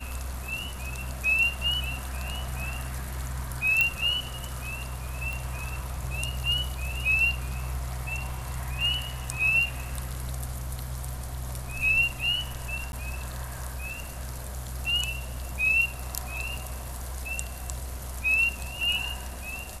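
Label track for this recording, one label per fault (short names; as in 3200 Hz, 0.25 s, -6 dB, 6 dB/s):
3.810000	3.810000	pop -8 dBFS
5.330000	5.330000	pop
12.920000	12.930000	gap 11 ms
16.570000	16.570000	gap 2.8 ms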